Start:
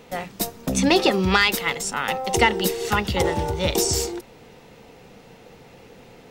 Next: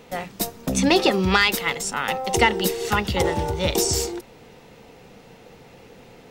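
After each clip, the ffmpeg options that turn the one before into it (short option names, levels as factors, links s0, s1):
-af anull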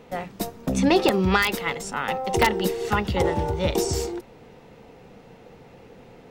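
-af "aeval=exprs='(mod(1.88*val(0)+1,2)-1)/1.88':c=same,highshelf=f=2500:g=-9"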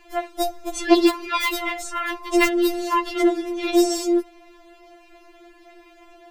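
-af "afftfilt=real='re*4*eq(mod(b,16),0)':imag='im*4*eq(mod(b,16),0)':win_size=2048:overlap=0.75,volume=1.68"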